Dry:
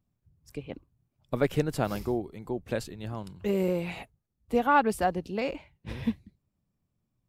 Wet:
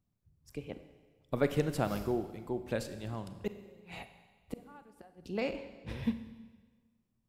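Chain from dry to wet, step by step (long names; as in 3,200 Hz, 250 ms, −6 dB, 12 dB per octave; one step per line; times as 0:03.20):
0:03.47–0:05.32: gate with flip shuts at −21 dBFS, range −30 dB
four-comb reverb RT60 1.4 s, combs from 31 ms, DRR 10 dB
level −3.5 dB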